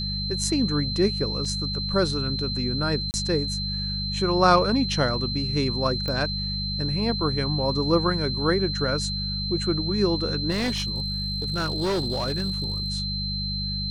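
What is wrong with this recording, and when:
mains hum 50 Hz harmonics 4 −31 dBFS
whistle 4,100 Hz −29 dBFS
0:01.45: drop-out 3.9 ms
0:03.11–0:03.14: drop-out 29 ms
0:06.08: click −17 dBFS
0:10.50–0:12.90: clipping −21.5 dBFS

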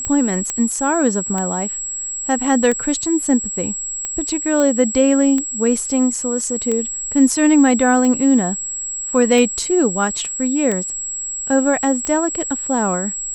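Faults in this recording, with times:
scratch tick 45 rpm −10 dBFS
whistle 7,700 Hz −23 dBFS
0:00.50: click −7 dBFS
0:04.60: click −8 dBFS

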